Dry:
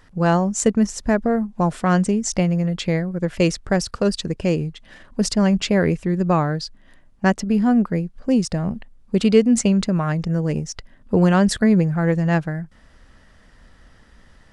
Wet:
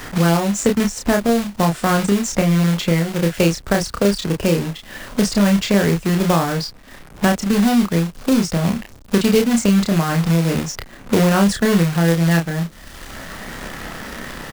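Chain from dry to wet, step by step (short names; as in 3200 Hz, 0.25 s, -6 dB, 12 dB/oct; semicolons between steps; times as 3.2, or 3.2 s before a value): companded quantiser 4-bit; doubler 30 ms -3.5 dB; three-band squash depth 70%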